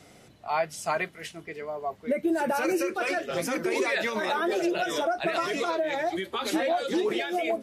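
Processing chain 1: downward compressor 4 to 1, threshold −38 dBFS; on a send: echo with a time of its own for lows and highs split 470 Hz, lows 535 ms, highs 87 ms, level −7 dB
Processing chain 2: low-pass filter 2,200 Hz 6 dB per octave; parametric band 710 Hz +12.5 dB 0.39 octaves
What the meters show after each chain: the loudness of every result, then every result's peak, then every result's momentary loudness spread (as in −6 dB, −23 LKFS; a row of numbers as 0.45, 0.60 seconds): −38.0, −23.5 LKFS; −24.5, −7.5 dBFS; 3, 9 LU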